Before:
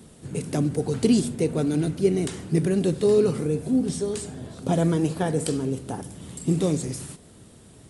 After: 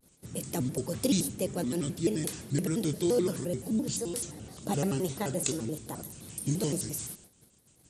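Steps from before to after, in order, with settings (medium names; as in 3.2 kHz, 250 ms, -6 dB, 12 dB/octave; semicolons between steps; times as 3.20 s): treble shelf 3.8 kHz +11.5 dB; gate -44 dBFS, range -22 dB; vibrato with a chosen wave square 5.8 Hz, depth 250 cents; trim -8 dB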